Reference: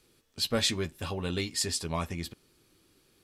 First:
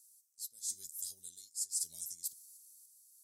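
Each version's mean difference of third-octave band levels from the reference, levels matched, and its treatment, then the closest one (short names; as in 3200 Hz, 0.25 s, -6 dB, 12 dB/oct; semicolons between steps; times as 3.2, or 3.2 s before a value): 22.5 dB: inverse Chebyshev high-pass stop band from 2800 Hz, stop band 50 dB; reverse; compressor 12:1, threshold -50 dBFS, peak gain reduction 20.5 dB; reverse; random-step tremolo; gain +16.5 dB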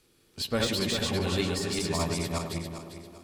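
9.0 dB: regenerating reverse delay 0.199 s, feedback 54%, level 0 dB; de-esser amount 60%; on a send: tape echo 0.102 s, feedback 87%, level -7 dB, low-pass 1200 Hz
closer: second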